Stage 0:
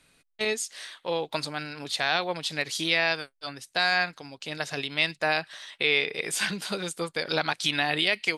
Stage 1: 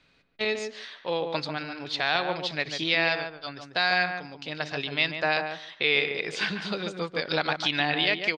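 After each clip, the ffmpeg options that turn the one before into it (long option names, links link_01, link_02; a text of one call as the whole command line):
ffmpeg -i in.wav -filter_complex "[0:a]lowpass=frequency=5100:width=0.5412,lowpass=frequency=5100:width=1.3066,asplit=2[link_01][link_02];[link_02]adelay=144,lowpass=frequency=1300:poles=1,volume=-5dB,asplit=2[link_03][link_04];[link_04]adelay=144,lowpass=frequency=1300:poles=1,volume=0.16,asplit=2[link_05][link_06];[link_06]adelay=144,lowpass=frequency=1300:poles=1,volume=0.16[link_07];[link_03][link_05][link_07]amix=inputs=3:normalize=0[link_08];[link_01][link_08]amix=inputs=2:normalize=0" out.wav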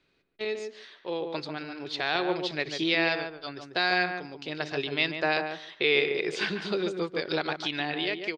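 ffmpeg -i in.wav -af "equalizer=frequency=370:width=3.1:gain=11.5,dynaudnorm=framelen=380:gausssize=9:maxgain=11.5dB,volume=-8dB" out.wav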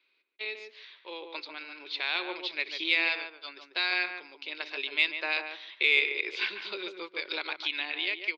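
ffmpeg -i in.wav -af "highpass=frequency=340:width=0.5412,highpass=frequency=340:width=1.3066,equalizer=frequency=450:width_type=q:width=4:gain=-4,equalizer=frequency=710:width_type=q:width=4:gain=-6,equalizer=frequency=1000:width_type=q:width=4:gain=6,equalizer=frequency=1500:width_type=q:width=4:gain=3,equalizer=frequency=2200:width_type=q:width=4:gain=7,equalizer=frequency=3100:width_type=q:width=4:gain=-5,lowpass=frequency=3600:width=0.5412,lowpass=frequency=3600:width=1.3066,aexciter=amount=5.9:drive=3:freq=2500,volume=-8dB" out.wav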